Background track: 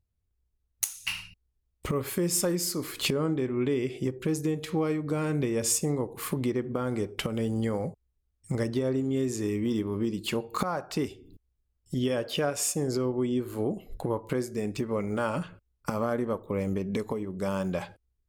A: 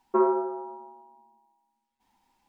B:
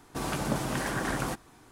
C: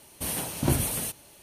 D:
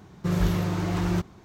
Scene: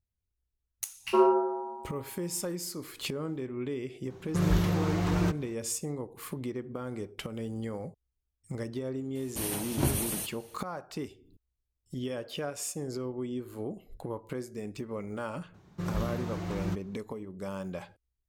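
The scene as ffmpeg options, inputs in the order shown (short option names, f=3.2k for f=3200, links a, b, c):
-filter_complex "[4:a]asplit=2[a][b];[0:a]volume=-7.5dB[c];[1:a]dynaudnorm=f=120:g=3:m=6.5dB,atrim=end=2.48,asetpts=PTS-STARTPTS,volume=-5dB,afade=t=in:d=0.05,afade=t=out:st=2.43:d=0.05,adelay=990[d];[a]atrim=end=1.44,asetpts=PTS-STARTPTS,volume=-2dB,afade=t=in:d=0.004:c=hsin,afade=t=out:st=1.436:d=0.004:c=hsin,adelay=4100[e];[3:a]atrim=end=1.42,asetpts=PTS-STARTPTS,volume=-3.5dB,afade=t=in:d=0.004:c=hsin,afade=t=out:st=1.416:d=0.004:c=hsin,adelay=9150[f];[b]atrim=end=1.44,asetpts=PTS-STARTPTS,volume=-9dB,afade=t=in:d=0.004:c=hsin,afade=t=out:st=1.436:d=0.004:c=hsin,adelay=15540[g];[c][d][e][f][g]amix=inputs=5:normalize=0"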